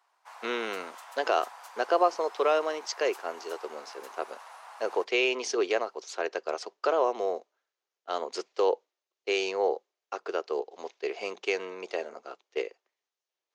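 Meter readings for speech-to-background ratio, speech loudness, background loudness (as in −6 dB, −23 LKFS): 17.0 dB, −30.5 LKFS, −47.5 LKFS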